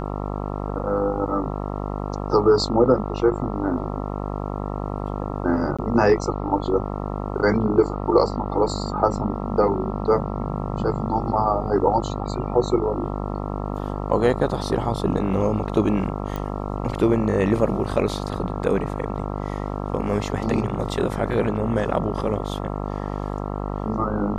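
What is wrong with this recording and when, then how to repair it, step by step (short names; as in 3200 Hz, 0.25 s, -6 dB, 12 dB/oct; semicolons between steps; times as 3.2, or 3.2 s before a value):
buzz 50 Hz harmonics 27 -28 dBFS
5.77–5.79 gap 16 ms
16.36 pop -16 dBFS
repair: de-click; de-hum 50 Hz, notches 27; interpolate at 5.77, 16 ms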